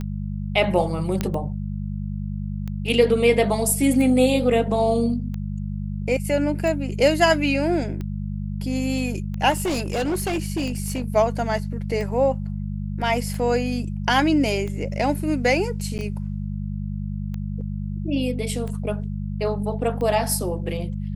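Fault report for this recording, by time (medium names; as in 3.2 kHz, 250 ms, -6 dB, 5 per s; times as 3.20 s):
hum 50 Hz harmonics 4 -28 dBFS
tick 45 rpm -20 dBFS
1.21 s: pop -9 dBFS
9.50–11.10 s: clipped -20 dBFS
15.98–15.99 s: dropout 8.7 ms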